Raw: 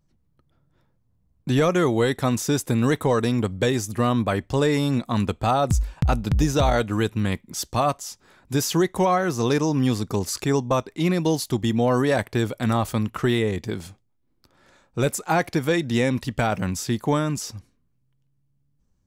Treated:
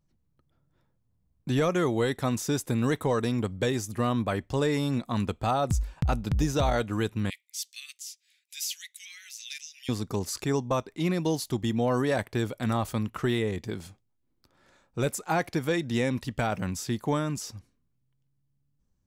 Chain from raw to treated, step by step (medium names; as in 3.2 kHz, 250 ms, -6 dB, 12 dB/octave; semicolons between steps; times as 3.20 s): 7.30–9.89 s: steep high-pass 2.1 kHz 48 dB/octave; trim -5.5 dB